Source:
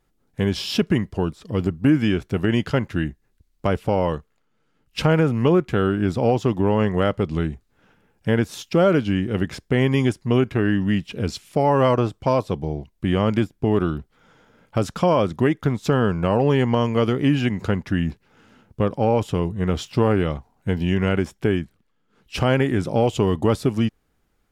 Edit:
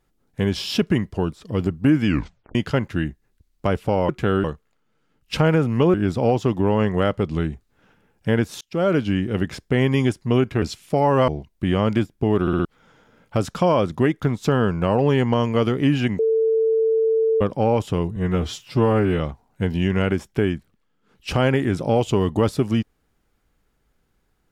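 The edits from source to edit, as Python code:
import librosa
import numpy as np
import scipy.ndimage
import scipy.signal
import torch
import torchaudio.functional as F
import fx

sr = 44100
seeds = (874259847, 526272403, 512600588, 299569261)

y = fx.edit(x, sr, fx.tape_stop(start_s=2.06, length_s=0.49),
    fx.move(start_s=5.59, length_s=0.35, to_s=4.09),
    fx.fade_in_span(start_s=8.61, length_s=0.49, curve='qsin'),
    fx.cut(start_s=10.62, length_s=0.63),
    fx.cut(start_s=11.91, length_s=0.78),
    fx.stutter_over(start_s=13.82, slice_s=0.06, count=4),
    fx.bleep(start_s=17.6, length_s=1.22, hz=446.0, db=-15.5),
    fx.stretch_span(start_s=19.57, length_s=0.69, factor=1.5), tone=tone)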